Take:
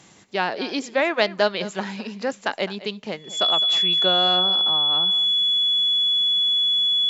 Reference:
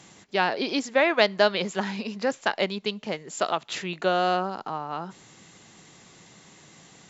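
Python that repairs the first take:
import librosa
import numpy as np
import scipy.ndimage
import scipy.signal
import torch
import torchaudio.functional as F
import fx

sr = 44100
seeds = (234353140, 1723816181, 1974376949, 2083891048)

y = fx.notch(x, sr, hz=3400.0, q=30.0)
y = fx.fix_echo_inverse(y, sr, delay_ms=210, level_db=-16.0)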